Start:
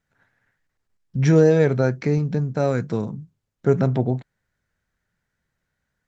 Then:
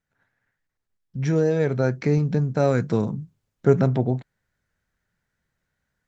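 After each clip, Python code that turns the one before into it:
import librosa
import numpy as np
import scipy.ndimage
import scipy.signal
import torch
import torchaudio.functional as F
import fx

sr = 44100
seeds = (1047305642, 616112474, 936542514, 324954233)

y = fx.rider(x, sr, range_db=10, speed_s=0.5)
y = y * 10.0 ** (-1.5 / 20.0)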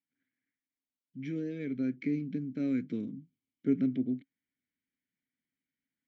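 y = fx.vowel_filter(x, sr, vowel='i')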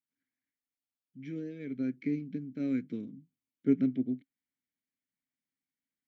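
y = fx.upward_expand(x, sr, threshold_db=-39.0, expansion=1.5)
y = y * 10.0 ** (2.5 / 20.0)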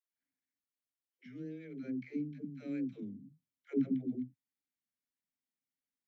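y = fx.dispersion(x, sr, late='lows', ms=148.0, hz=330.0)
y = fx.record_warp(y, sr, rpm=33.33, depth_cents=100.0)
y = y * 10.0 ** (-5.5 / 20.0)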